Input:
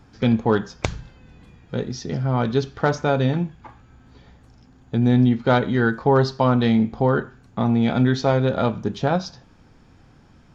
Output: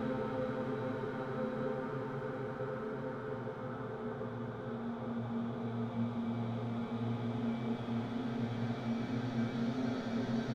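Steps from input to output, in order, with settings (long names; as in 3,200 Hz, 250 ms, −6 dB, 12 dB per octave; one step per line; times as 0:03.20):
delay that plays each chunk backwards 107 ms, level −2 dB
tuned comb filter 430 Hz, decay 0.28 s, harmonics odd, mix 80%
wave folding −22.5 dBFS
on a send: single-tap delay 224 ms −5 dB
on the sum: extreme stretch with random phases 11×, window 1.00 s, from 0:07.12
level −7 dB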